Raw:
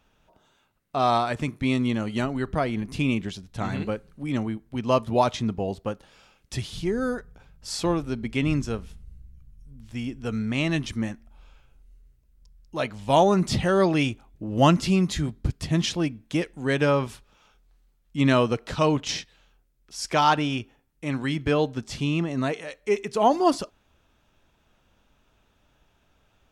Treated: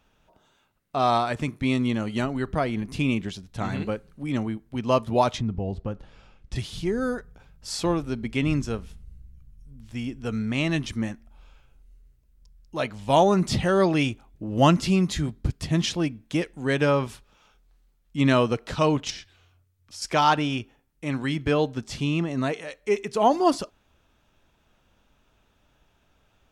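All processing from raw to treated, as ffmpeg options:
-filter_complex "[0:a]asettb=1/sr,asplit=3[s0][s1][s2];[s0]atrim=end=5.384[s3];[s1]atrim=start=5.38:end=6.56,asetpts=PTS-STARTPTS,afade=t=in:d=0.004:c=qsin,afade=t=out:st=1.176:d=0.004:c=qsin,aemphasis=mode=reproduction:type=bsi,acompressor=threshold=0.0398:ratio=2:attack=3.2:release=140:knee=1:detection=peak[s4];[s2]atrim=start=6.556[s5];[s3][s4]acrossfade=d=0.004:c1=hsin:c2=qsin[s6];[s6][s5]acrossfade=d=0.004:c1=qsin:c2=hsin,asettb=1/sr,asplit=3[s7][s8][s9];[s7]atrim=end=19.104[s10];[s8]atrim=start=19.1:end=20.02,asetpts=PTS-STARTPTS,afade=t=in:d=0.004:c=qsin,afade=t=out:st=0.916:d=0.004:c=qsin,acompressor=threshold=0.0141:ratio=3:attack=3.2:release=140:knee=1:detection=peak,afreqshift=-130[s11];[s9]atrim=start=20.016[s12];[s10][s11]acrossfade=d=0.004:c1=hsin:c2=qsin[s13];[s13][s12]acrossfade=d=0.004:c1=qsin:c2=hsin"

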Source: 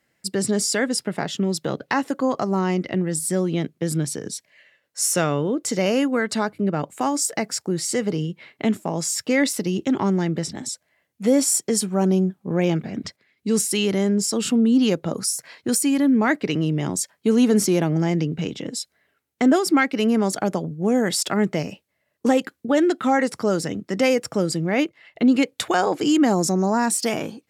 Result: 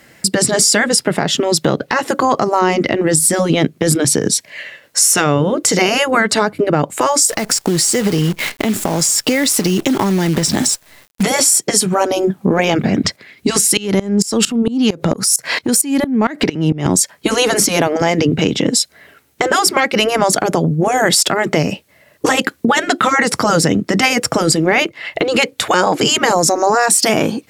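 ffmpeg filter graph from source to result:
-filter_complex "[0:a]asettb=1/sr,asplit=3[s0][s1][s2];[s0]atrim=end=7.294[s3];[s1]atrim=start=7.29:end=11.23,asetpts=PTS-STARTPTS,afade=t=in:d=0.004:c=qsin,afade=t=out:st=3.936:d=0.004:c=qsin,highshelf=f=3700:g=7.5,acompressor=threshold=0.0398:ratio=10:attack=3.2:release=140:knee=1:detection=peak,acrusher=bits=8:dc=4:mix=0:aa=0.000001[s4];[s2]atrim=start=11.226[s5];[s3][s4]acrossfade=d=0.004:c1=hsin:c2=qsin[s6];[s6][s5]acrossfade=d=0.004:c1=qsin:c2=hsin,asettb=1/sr,asplit=3[s7][s8][s9];[s7]atrim=end=13.774[s10];[s8]atrim=start=13.77:end=16.86,asetpts=PTS-STARTPTS,afade=t=in:d=0.004:c=qsin,afade=t=out:st=3.086:d=0.004:c=qsin,acompressor=threshold=0.0251:ratio=8:attack=3.2:release=140:knee=1:detection=peak,aeval=exprs='0.178*sin(PI/2*2.24*val(0)/0.178)':c=same,aeval=exprs='val(0)*pow(10,-22*if(lt(mod(-4.4*n/s,1),2*abs(-4.4)/1000),1-mod(-4.4*n/s,1)/(2*abs(-4.4)/1000),(mod(-4.4*n/s,1)-2*abs(-4.4)/1000)/(1-2*abs(-4.4)/1000))/20)':c=same[s11];[s9]atrim=start=16.856[s12];[s10][s11]acrossfade=d=0.004:c1=hsin:c2=qsin[s13];[s13][s12]acrossfade=d=0.004:c1=qsin:c2=hsin,afftfilt=real='re*lt(hypot(re,im),0.562)':imag='im*lt(hypot(re,im),0.562)':win_size=1024:overlap=0.75,acompressor=threshold=0.0126:ratio=2.5,alimiter=level_in=16.8:limit=0.891:release=50:level=0:latency=1,volume=0.891"

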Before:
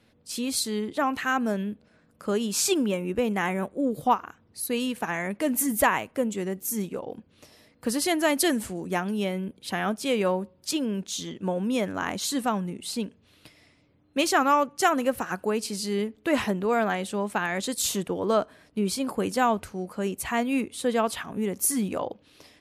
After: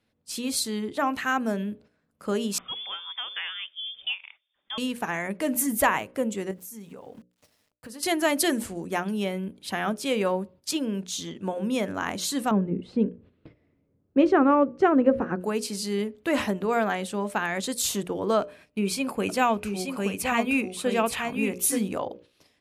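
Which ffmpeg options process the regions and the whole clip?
-filter_complex "[0:a]asettb=1/sr,asplit=3[s0][s1][s2];[s0]atrim=end=2.584[s3];[s1]atrim=start=2.58:end=4.78,asetpts=PTS-STARTPTS,afade=t=in:d=0.004:c=qsin,afade=t=out:st=2.196:d=0.004:c=qsin,lowshelf=f=370:g=-11,acrossover=split=290|790[s4][s5][s6];[s4]acompressor=threshold=0.00631:ratio=4[s7];[s5]acompressor=threshold=0.0141:ratio=4[s8];[s6]acompressor=threshold=0.0251:ratio=4[s9];[s7][s8][s9]amix=inputs=3:normalize=0,lowpass=f=3100:t=q:w=0.5098,lowpass=f=3100:t=q:w=0.6013,lowpass=f=3100:t=q:w=0.9,lowpass=f=3100:t=q:w=2.563,afreqshift=-3700[s10];[s2]atrim=start=4.776[s11];[s3][s10]acrossfade=d=0.004:c1=hsin:c2=qsin[s12];[s12][s11]acrossfade=d=0.004:c1=qsin:c2=hsin,asettb=1/sr,asplit=3[s13][s14][s15];[s13]atrim=end=6.514[s16];[s14]atrim=start=6.51:end=8.03,asetpts=PTS-STARTPTS,afade=t=in:d=0.004:c=qsin,afade=t=out:st=1.516:d=0.004:c=qsin,aeval=exprs='val(0)*gte(abs(val(0)),0.00224)':c=same,bandreject=f=350:w=5.2,acompressor=threshold=0.01:ratio=4:attack=3.2:release=140:knee=1:detection=peak[s17];[s15]atrim=start=8.026[s18];[s16][s17]acrossfade=d=0.004:c1=hsin:c2=qsin[s19];[s19][s18]acrossfade=d=0.004:c1=qsin:c2=hsin,asettb=1/sr,asplit=3[s20][s21][s22];[s20]atrim=end=12.514[s23];[s21]atrim=start=12.51:end=15.41,asetpts=PTS-STARTPTS,afade=t=in:d=0.004:c=qsin,afade=t=out:st=2.896:d=0.004:c=qsin,lowpass=1600,lowshelf=f=590:t=q:w=1.5:g=7[s24];[s22]atrim=start=15.406[s25];[s23][s24]acrossfade=d=0.004:c1=hsin:c2=qsin[s26];[s26][s25]acrossfade=d=0.004:c1=qsin:c2=hsin,asettb=1/sr,asplit=3[s27][s28][s29];[s27]atrim=end=18.414[s30];[s28]atrim=start=18.41:end=21.79,asetpts=PTS-STARTPTS,afade=t=in:d=0.004:c=qsin,afade=t=out:st=3.376:d=0.004:c=qsin,equalizer=f=2500:t=o:w=0.25:g=11,aecho=1:1:877:0.531,atrim=end_sample=149058[s31];[s29]atrim=start=21.786[s32];[s30][s31]acrossfade=d=0.004:c1=hsin:c2=qsin[s33];[s33][s32]acrossfade=d=0.004:c1=qsin:c2=hsin,agate=range=0.282:threshold=0.00355:ratio=16:detection=peak,bandreject=f=60:t=h:w=6,bandreject=f=120:t=h:w=6,bandreject=f=180:t=h:w=6,bandreject=f=240:t=h:w=6,bandreject=f=300:t=h:w=6,bandreject=f=360:t=h:w=6,bandreject=f=420:t=h:w=6,bandreject=f=480:t=h:w=6,bandreject=f=540:t=h:w=6,bandreject=f=600:t=h:w=6"

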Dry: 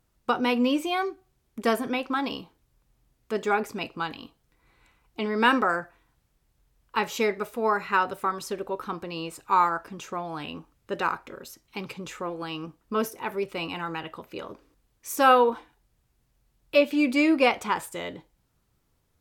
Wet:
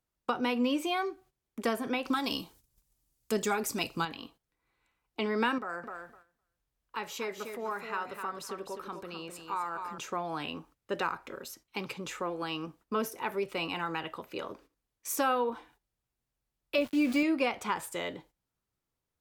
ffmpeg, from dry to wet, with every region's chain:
-filter_complex "[0:a]asettb=1/sr,asplit=3[s0][s1][s2];[s0]atrim=end=2.054[s3];[s1]atrim=start=2.05:end=4.05,asetpts=PTS-STARTPTS,afade=t=in:d=0.004:c=qsin,afade=t=out:st=1.996:d=0.004:c=qsin,bass=f=250:g=6,treble=f=4000:g=15,aphaser=in_gain=1:out_gain=1:delay=3.5:decay=0.3:speed=1.5:type=sinusoidal[s4];[s2]atrim=start=4.046[s5];[s3][s4]acrossfade=d=0.004:c1=hsin:c2=qsin[s6];[s6][s5]acrossfade=d=0.004:c1=qsin:c2=hsin,asettb=1/sr,asplit=3[s7][s8][s9];[s7]atrim=end=5.584[s10];[s8]atrim=start=5.58:end=9.98,asetpts=PTS-STARTPTS,afade=t=in:d=0.004:c=qsin,afade=t=out:st=4.396:d=0.004:c=qsin,acompressor=threshold=0.00355:ratio=1.5:attack=3.2:release=140:knee=1:detection=peak,aecho=1:1:255|510|765:0.422|0.0759|0.0137,atrim=end_sample=194040[s11];[s9]atrim=start=9.976[s12];[s10][s11]acrossfade=d=0.004:c1=hsin:c2=qsin[s13];[s13][s12]acrossfade=d=0.004:c1=qsin:c2=hsin,asettb=1/sr,asplit=3[s14][s15][s16];[s14]atrim=end=16.784[s17];[s15]atrim=start=16.78:end=17.23,asetpts=PTS-STARTPTS,afade=t=in:d=0.004:c=qsin,afade=t=out:st=0.446:d=0.004:c=qsin,lowshelf=f=260:g=6.5,aeval=exprs='val(0)*gte(abs(val(0)),0.0237)':c=same,agate=range=0.0224:threshold=0.02:ratio=3:release=100:detection=peak[s18];[s16]atrim=start=17.226[s19];[s17][s18]acrossfade=d=0.004:c1=hsin:c2=qsin[s20];[s20][s19]acrossfade=d=0.004:c1=qsin:c2=hsin,agate=range=0.224:threshold=0.002:ratio=16:detection=peak,lowshelf=f=210:g=-6.5,acrossover=split=210[s21][s22];[s22]acompressor=threshold=0.0355:ratio=3[s23];[s21][s23]amix=inputs=2:normalize=0"

